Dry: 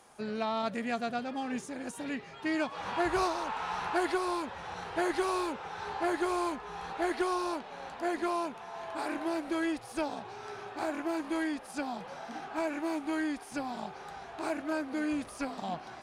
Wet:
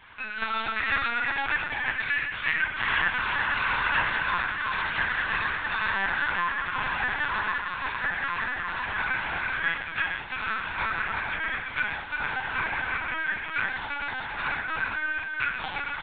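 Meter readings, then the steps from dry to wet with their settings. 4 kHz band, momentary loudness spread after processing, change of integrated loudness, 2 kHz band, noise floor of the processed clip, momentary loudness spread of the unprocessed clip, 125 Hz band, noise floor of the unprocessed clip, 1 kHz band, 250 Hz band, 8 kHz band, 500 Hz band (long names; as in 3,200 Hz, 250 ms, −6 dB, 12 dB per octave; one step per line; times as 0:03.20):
+9.0 dB, 5 LU, +7.0 dB, +16.0 dB, −36 dBFS, 10 LU, +8.0 dB, −48 dBFS, +4.5 dB, −12.0 dB, below −30 dB, −9.0 dB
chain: transient designer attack +9 dB, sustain −7 dB
downward compressor 6 to 1, threshold −33 dBFS, peak gain reduction 13 dB
high-pass with resonance 1,700 Hz, resonance Q 2.7
on a send: multi-tap delay 121/166/346/453 ms −11.5/−15/−4/−6 dB
on the sum: rectangular room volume 280 cubic metres, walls furnished, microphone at 7.2 metres
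linear-prediction vocoder at 8 kHz pitch kept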